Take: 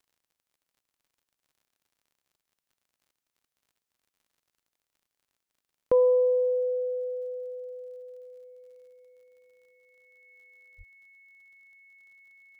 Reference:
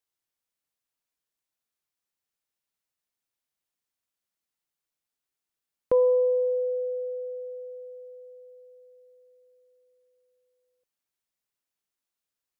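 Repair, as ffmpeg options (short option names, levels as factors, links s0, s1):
-filter_complex "[0:a]adeclick=t=4,bandreject=f=2200:w=30,asplit=3[s0][s1][s2];[s0]afade=t=out:st=10.77:d=0.02[s3];[s1]highpass=f=140:w=0.5412,highpass=f=140:w=1.3066,afade=t=in:st=10.77:d=0.02,afade=t=out:st=10.89:d=0.02[s4];[s2]afade=t=in:st=10.89:d=0.02[s5];[s3][s4][s5]amix=inputs=3:normalize=0"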